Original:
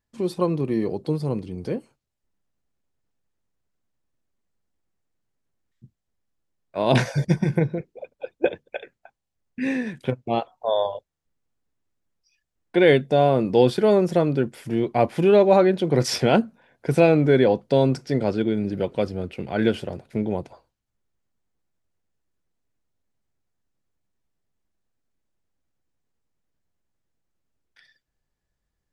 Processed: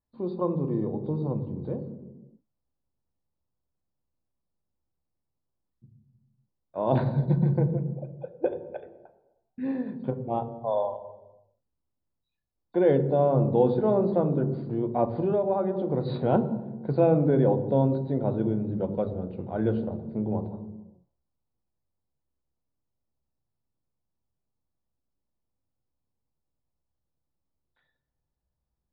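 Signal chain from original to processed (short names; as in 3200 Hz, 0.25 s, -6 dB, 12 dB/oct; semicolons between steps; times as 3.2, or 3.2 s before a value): nonlinear frequency compression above 3500 Hz 4:1; resonant high shelf 1500 Hz -13.5 dB, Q 1.5; on a send at -9 dB: reverb RT60 1.2 s, pre-delay 3 ms; 15.23–16.22 on the sum: compressor 3:1, threshold -16 dBFS, peak gain reduction 7 dB; gain -7 dB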